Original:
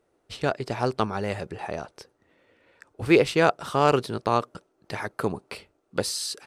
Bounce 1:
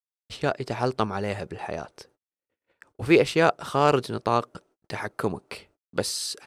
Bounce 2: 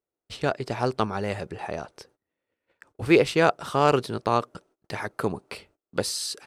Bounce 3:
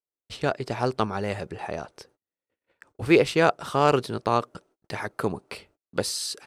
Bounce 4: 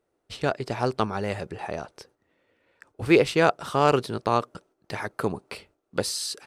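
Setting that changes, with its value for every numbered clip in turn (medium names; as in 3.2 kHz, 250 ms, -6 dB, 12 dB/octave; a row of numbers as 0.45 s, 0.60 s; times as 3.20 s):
gate, range: -59 dB, -22 dB, -35 dB, -6 dB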